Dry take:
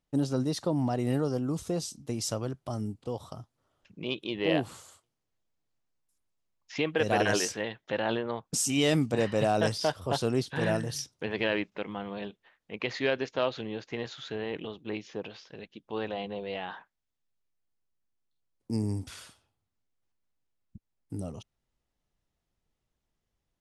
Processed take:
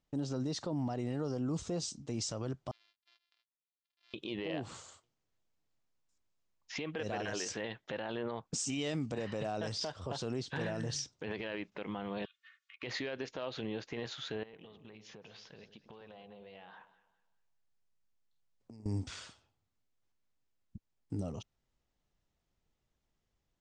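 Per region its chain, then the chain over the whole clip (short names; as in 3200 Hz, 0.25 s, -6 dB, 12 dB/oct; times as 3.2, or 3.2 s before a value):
2.71–4.14 sample sorter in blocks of 128 samples + ladder band-pass 5500 Hz, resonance 40% + air absorption 410 m
12.25–12.83 comb 2.8 ms, depth 78% + compressor 8:1, threshold -45 dBFS + brick-wall FIR high-pass 1100 Hz
14.43–18.86 bell 320 Hz -7 dB 0.42 oct + compressor 12:1, threshold -49 dBFS + echo with dull and thin repeats by turns 0.102 s, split 1200 Hz, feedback 56%, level -10.5 dB
whole clip: steep low-pass 7900 Hz 48 dB/oct; compressor, threshold -28 dBFS; limiter -27.5 dBFS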